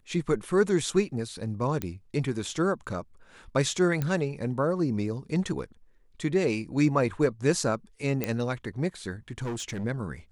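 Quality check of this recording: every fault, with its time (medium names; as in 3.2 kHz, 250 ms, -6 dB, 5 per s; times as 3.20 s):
1.82 s: pop -15 dBFS
4.02 s: pop -16 dBFS
8.24 s: pop -12 dBFS
9.42–9.85 s: clipped -29.5 dBFS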